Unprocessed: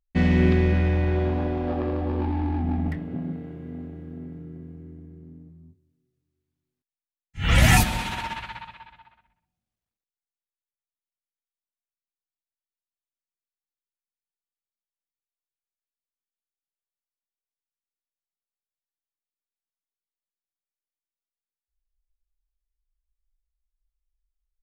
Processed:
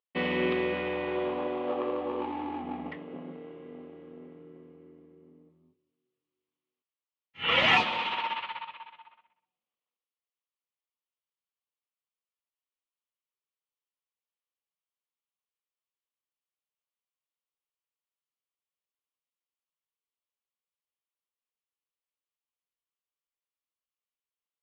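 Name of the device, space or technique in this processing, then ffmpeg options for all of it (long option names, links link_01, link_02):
phone earpiece: -af "highpass=450,equalizer=frequency=490:width_type=q:width=4:gain=6,equalizer=frequency=700:width_type=q:width=4:gain=-5,equalizer=frequency=1100:width_type=q:width=4:gain=6,equalizer=frequency=1600:width_type=q:width=4:gain=-8,equalizer=frequency=3000:width_type=q:width=4:gain=5,lowpass=frequency=3500:width=0.5412,lowpass=frequency=3500:width=1.3066"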